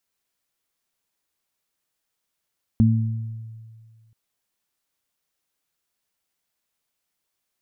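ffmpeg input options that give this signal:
ffmpeg -f lavfi -i "aevalsrc='0.2*pow(10,-3*t/1.93)*sin(2*PI*112*t)+0.211*pow(10,-3*t/0.88)*sin(2*PI*224*t)':duration=1.33:sample_rate=44100" out.wav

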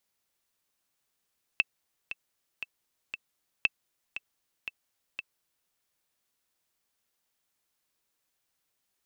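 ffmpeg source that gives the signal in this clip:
ffmpeg -f lavfi -i "aevalsrc='pow(10,(-9.5-12.5*gte(mod(t,4*60/117),60/117))/20)*sin(2*PI*2650*mod(t,60/117))*exp(-6.91*mod(t,60/117)/0.03)':duration=4.1:sample_rate=44100" out.wav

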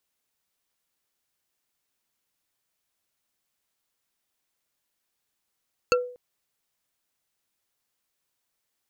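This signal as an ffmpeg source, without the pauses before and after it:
ffmpeg -f lavfi -i "aevalsrc='0.158*pow(10,-3*t/0.48)*sin(2*PI*494*t)+0.133*pow(10,-3*t/0.142)*sin(2*PI*1362*t)+0.112*pow(10,-3*t/0.063)*sin(2*PI*2669.6*t)+0.0944*pow(10,-3*t/0.035)*sin(2*PI*4412.9*t)+0.0794*pow(10,-3*t/0.021)*sin(2*PI*6590*t)':duration=0.24:sample_rate=44100" out.wav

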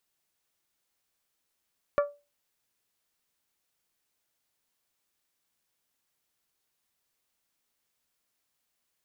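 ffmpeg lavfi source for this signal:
ffmpeg -f lavfi -i "aevalsrc='0.126*pow(10,-3*t/0.28)*sin(2*PI*578*t)+0.0631*pow(10,-3*t/0.172)*sin(2*PI*1156*t)+0.0316*pow(10,-3*t/0.152)*sin(2*PI*1387.2*t)+0.0158*pow(10,-3*t/0.13)*sin(2*PI*1734*t)+0.00794*pow(10,-3*t/0.106)*sin(2*PI*2312*t)':duration=0.89:sample_rate=44100" out.wav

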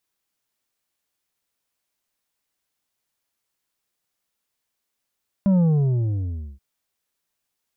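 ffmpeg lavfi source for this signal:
ffmpeg -f lavfi -i "aevalsrc='0.178*clip((1.13-t)/1.02,0,1)*tanh(2.11*sin(2*PI*200*1.13/log(65/200)*(exp(log(65/200)*t/1.13)-1)))/tanh(2.11)':duration=1.13:sample_rate=44100" out.wav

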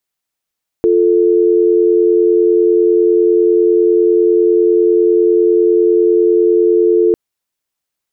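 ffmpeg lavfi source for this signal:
ffmpeg -f lavfi -i "aevalsrc='0.299*(sin(2*PI*350*t)+sin(2*PI*440*t))':duration=6.3:sample_rate=44100" out.wav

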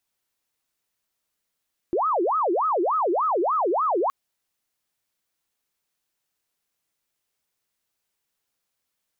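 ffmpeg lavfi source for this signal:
ffmpeg -f lavfi -i "aevalsrc='0.106*sin(2*PI*(813*t-477/(2*PI*3.4)*sin(2*PI*3.4*t)))':duration=2.17:sample_rate=44100" out.wav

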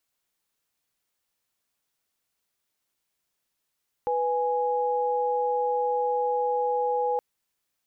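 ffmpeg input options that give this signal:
ffmpeg -f lavfi -i "aevalsrc='0.0531*(sin(2*PI*493.88*t)+sin(2*PI*830.61*t))':duration=3.12:sample_rate=44100" out.wav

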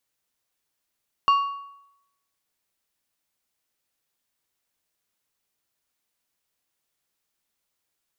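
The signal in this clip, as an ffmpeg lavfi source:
ffmpeg -f lavfi -i "aevalsrc='0.224*pow(10,-3*t/0.82)*sin(2*PI*1120*t)+0.0562*pow(10,-3*t/0.623)*sin(2*PI*2800*t)+0.0141*pow(10,-3*t/0.541)*sin(2*PI*4480*t)+0.00355*pow(10,-3*t/0.506)*sin(2*PI*5600*t)+0.000891*pow(10,-3*t/0.468)*sin(2*PI*7280*t)':duration=1.55:sample_rate=44100" out.wav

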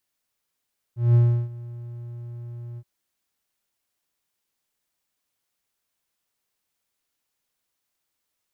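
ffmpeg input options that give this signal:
ffmpeg -f lavfi -i "aevalsrc='0.316*(1-4*abs(mod(119*t+0.25,1)-0.5))':duration=1.873:sample_rate=44100,afade=type=in:duration=0.185,afade=type=out:start_time=0.185:duration=0.34:silence=0.0841,afade=type=out:start_time=1.82:duration=0.053" out.wav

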